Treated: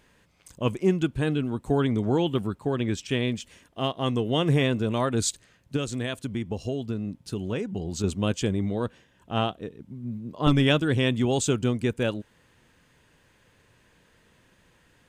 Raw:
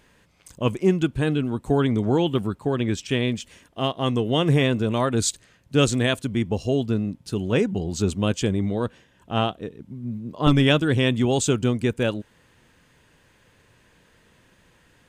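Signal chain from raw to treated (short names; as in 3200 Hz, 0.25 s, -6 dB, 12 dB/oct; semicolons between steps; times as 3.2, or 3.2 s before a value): 5.76–8.04 compressor 5:1, threshold -23 dBFS, peak gain reduction 9.5 dB; gain -3 dB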